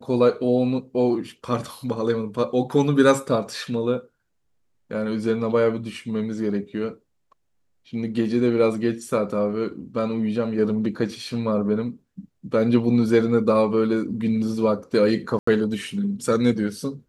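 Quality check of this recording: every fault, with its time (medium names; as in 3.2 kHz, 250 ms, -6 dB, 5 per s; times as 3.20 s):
15.39–15.47 s: dropout 84 ms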